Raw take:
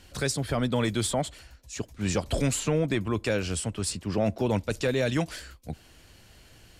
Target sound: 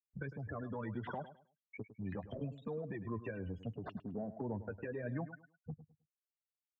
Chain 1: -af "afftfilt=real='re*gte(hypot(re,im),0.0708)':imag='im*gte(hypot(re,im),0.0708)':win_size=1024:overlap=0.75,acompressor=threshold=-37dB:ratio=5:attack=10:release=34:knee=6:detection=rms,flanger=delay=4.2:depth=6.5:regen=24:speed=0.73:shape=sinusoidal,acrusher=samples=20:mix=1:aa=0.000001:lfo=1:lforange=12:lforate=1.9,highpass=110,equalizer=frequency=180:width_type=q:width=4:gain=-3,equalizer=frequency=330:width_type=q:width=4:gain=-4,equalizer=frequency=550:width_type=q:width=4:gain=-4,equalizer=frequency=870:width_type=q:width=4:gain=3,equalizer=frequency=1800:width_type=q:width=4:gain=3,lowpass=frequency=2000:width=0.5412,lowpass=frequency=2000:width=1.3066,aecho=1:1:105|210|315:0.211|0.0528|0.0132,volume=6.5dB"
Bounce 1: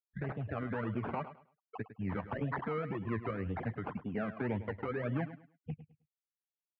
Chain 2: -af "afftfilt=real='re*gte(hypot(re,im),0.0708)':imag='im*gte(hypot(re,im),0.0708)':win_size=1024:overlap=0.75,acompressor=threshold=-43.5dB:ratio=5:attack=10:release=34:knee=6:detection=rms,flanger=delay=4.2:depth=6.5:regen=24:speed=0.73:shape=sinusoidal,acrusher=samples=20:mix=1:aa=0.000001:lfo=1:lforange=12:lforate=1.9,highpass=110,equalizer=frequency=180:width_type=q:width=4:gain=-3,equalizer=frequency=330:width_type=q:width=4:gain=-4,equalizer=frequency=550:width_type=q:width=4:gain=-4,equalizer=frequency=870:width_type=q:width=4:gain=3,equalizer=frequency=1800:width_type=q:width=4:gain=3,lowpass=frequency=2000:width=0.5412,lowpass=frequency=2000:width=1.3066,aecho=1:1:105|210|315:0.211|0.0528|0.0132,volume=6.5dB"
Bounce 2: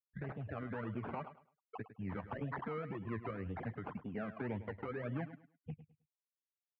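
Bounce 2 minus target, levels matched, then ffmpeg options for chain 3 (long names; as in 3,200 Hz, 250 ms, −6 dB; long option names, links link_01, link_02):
sample-and-hold swept by an LFO: distortion +7 dB
-af "afftfilt=real='re*gte(hypot(re,im),0.0708)':imag='im*gte(hypot(re,im),0.0708)':win_size=1024:overlap=0.75,acompressor=threshold=-43.5dB:ratio=5:attack=10:release=34:knee=6:detection=rms,flanger=delay=4.2:depth=6.5:regen=24:speed=0.73:shape=sinusoidal,acrusher=samples=4:mix=1:aa=0.000001:lfo=1:lforange=2.4:lforate=1.9,highpass=110,equalizer=frequency=180:width_type=q:width=4:gain=-3,equalizer=frequency=330:width_type=q:width=4:gain=-4,equalizer=frequency=550:width_type=q:width=4:gain=-4,equalizer=frequency=870:width_type=q:width=4:gain=3,equalizer=frequency=1800:width_type=q:width=4:gain=3,lowpass=frequency=2000:width=0.5412,lowpass=frequency=2000:width=1.3066,aecho=1:1:105|210|315:0.211|0.0528|0.0132,volume=6.5dB"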